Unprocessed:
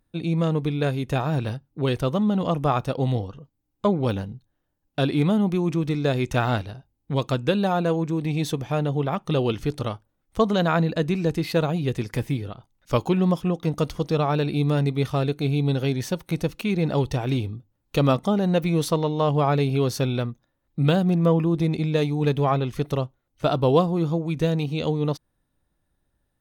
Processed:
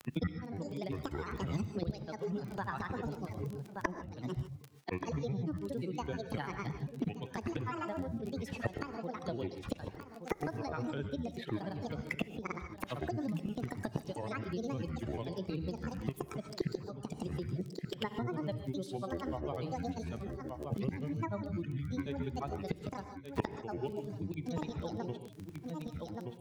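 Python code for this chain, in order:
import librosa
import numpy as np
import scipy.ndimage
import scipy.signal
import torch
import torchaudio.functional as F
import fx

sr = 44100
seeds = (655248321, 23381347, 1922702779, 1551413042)

p1 = fx.bin_expand(x, sr, power=1.5)
p2 = scipy.signal.sosfilt(scipy.signal.butter(4, 140.0, 'highpass', fs=sr, output='sos'), p1)
p3 = fx.high_shelf(p2, sr, hz=6400.0, db=-7.5)
p4 = fx.gate_flip(p3, sr, shuts_db=-26.0, range_db=-26)
p5 = fx.granulator(p4, sr, seeds[0], grain_ms=100.0, per_s=20.0, spray_ms=100.0, spread_st=12)
p6 = fx.dmg_crackle(p5, sr, seeds[1], per_s=17.0, level_db=-60.0)
p7 = fx.wow_flutter(p6, sr, seeds[2], rate_hz=2.1, depth_cents=24.0)
p8 = p7 + fx.echo_single(p7, sr, ms=1176, db=-18.5, dry=0)
p9 = fx.rev_gated(p8, sr, seeds[3], gate_ms=170, shape='rising', drr_db=10.0)
p10 = fx.band_squash(p9, sr, depth_pct=100)
y = p10 * librosa.db_to_amplitude(12.5)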